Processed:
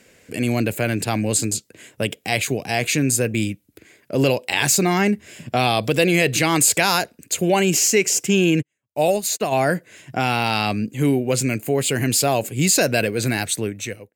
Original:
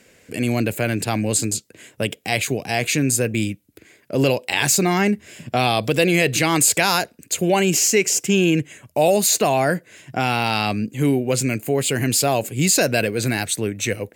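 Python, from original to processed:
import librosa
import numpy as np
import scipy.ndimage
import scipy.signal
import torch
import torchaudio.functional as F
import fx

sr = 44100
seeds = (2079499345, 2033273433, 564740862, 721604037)

y = fx.fade_out_tail(x, sr, length_s=0.59)
y = fx.upward_expand(y, sr, threshold_db=-38.0, expansion=2.5, at=(8.61, 9.51), fade=0.02)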